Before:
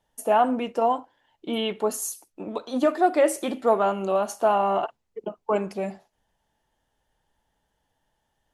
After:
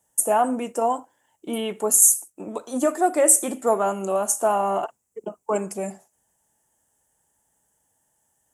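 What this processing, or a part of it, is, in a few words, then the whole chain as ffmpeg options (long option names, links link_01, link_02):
budget condenser microphone: -af "highpass=78,highshelf=frequency=5700:width_type=q:width=3:gain=12.5"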